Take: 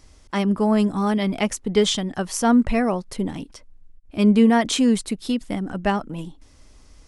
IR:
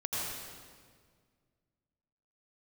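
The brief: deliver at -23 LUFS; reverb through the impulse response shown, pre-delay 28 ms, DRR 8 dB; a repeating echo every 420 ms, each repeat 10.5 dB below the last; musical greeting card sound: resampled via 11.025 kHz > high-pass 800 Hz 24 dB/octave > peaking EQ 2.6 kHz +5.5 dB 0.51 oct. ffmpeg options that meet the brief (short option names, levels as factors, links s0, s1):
-filter_complex "[0:a]aecho=1:1:420|840|1260:0.299|0.0896|0.0269,asplit=2[s0][s1];[1:a]atrim=start_sample=2205,adelay=28[s2];[s1][s2]afir=irnorm=-1:irlink=0,volume=0.211[s3];[s0][s3]amix=inputs=2:normalize=0,aresample=11025,aresample=44100,highpass=f=800:w=0.5412,highpass=f=800:w=1.3066,equalizer=f=2600:t=o:w=0.51:g=5.5,volume=1.78"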